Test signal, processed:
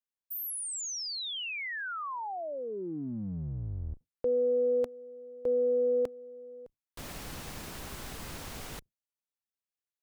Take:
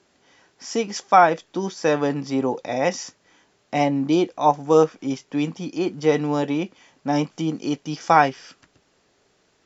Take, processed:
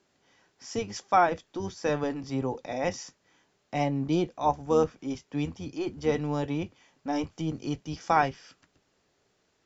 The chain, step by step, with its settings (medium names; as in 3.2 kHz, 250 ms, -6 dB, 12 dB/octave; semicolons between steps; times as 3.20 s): octave divider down 1 oct, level -6 dB; trim -8 dB